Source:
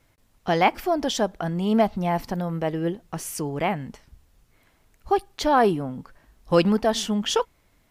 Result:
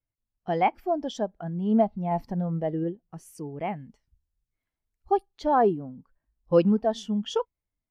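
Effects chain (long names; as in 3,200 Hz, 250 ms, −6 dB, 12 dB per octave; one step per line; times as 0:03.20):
0:02.11–0:02.84: leveller curve on the samples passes 1
0:03.67–0:05.26: high-shelf EQ 2,800 Hz +6.5 dB
every bin expanded away from the loudest bin 1.5 to 1
level −3 dB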